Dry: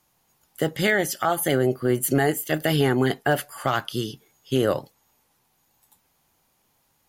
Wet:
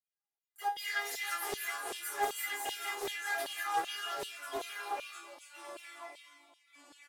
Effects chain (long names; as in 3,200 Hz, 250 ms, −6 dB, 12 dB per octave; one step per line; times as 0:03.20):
spectral magnitudes quantised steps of 30 dB
high-pass filter 45 Hz
low-shelf EQ 120 Hz −11.5 dB
notch filter 1,500 Hz, Q 6.1
leveller curve on the samples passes 5
notch comb filter 600 Hz
on a send: echo with shifted repeats 195 ms, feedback 33%, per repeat +62 Hz, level −3 dB
on the sum: flanger 1.5 Hz, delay 1.2 ms, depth 4.8 ms, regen −48%
tuned comb filter 410 Hz, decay 0.27 s, harmonics all, mix 100%
delay with pitch and tempo change per echo 175 ms, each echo −3 semitones, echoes 2, each echo −6 dB
auto-filter high-pass saw down 2.6 Hz 550–3,400 Hz
highs frequency-modulated by the lows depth 0.44 ms
level −4.5 dB